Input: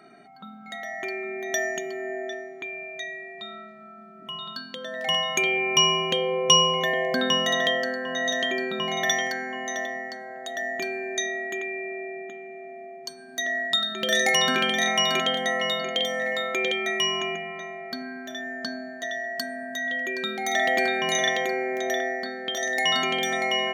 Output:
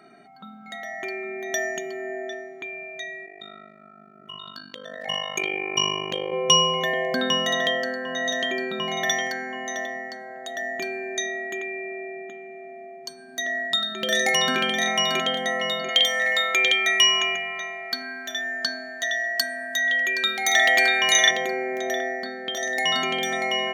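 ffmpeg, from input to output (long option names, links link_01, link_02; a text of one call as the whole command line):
ffmpeg -i in.wav -filter_complex "[0:a]asettb=1/sr,asplit=3[link_01][link_02][link_03];[link_01]atrim=end=3.264[link_04];[link_02]atrim=start=3.26:end=6.33,asetpts=PTS-STARTPTS,afade=type=in:duration=0.004:curve=qsin,afade=type=out:start_time=3.066:duration=0.004:curve=qsin,tremolo=f=50:d=0.919[link_05];[link_03]atrim=start=6.326[link_06];[link_04][link_05]acrossfade=duration=0.004:curve1=hsin:curve2=qsin[link_07];[link_07][link_06]acrossfade=duration=0.004:curve1=qsin:curve2=hsin,asettb=1/sr,asplit=3[link_08][link_09][link_10];[link_08]atrim=end=15.894[link_11];[link_09]atrim=start=15.89:end=21.31,asetpts=PTS-STARTPTS,afade=type=in:duration=0.004:curve=qsin,afade=type=out:start_time=5.416:duration=0.004:curve=qsin,tiltshelf=frequency=670:gain=-9[link_12];[link_10]atrim=start=21.306[link_13];[link_11][link_12]acrossfade=duration=0.004:curve1=hsin:curve2=qsin[link_14];[link_14][link_13]acrossfade=duration=0.004:curve1=qsin:curve2=hsin" out.wav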